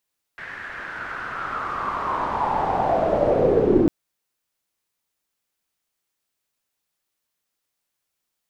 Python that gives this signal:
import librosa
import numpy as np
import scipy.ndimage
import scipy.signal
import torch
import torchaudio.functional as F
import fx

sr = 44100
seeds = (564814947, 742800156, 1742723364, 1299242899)

y = fx.riser_noise(sr, seeds[0], length_s=3.5, colour='white', kind='lowpass', start_hz=1800.0, end_hz=310.0, q=5.5, swell_db=28.0, law='linear')